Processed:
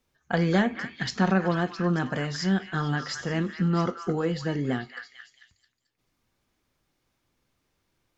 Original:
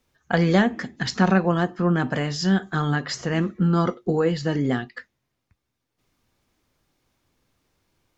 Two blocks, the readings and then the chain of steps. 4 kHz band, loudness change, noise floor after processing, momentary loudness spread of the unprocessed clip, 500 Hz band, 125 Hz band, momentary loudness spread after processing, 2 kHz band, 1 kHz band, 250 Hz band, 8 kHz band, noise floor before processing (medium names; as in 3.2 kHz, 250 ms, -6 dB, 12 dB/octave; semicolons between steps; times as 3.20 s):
-4.0 dB, -4.5 dB, -76 dBFS, 7 LU, -5.0 dB, -4.5 dB, 8 LU, -3.5 dB, -4.0 dB, -4.5 dB, no reading, -79 dBFS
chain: flange 0.91 Hz, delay 4.8 ms, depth 1.3 ms, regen -88%; repeats whose band climbs or falls 221 ms, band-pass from 1.7 kHz, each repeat 0.7 oct, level -5 dB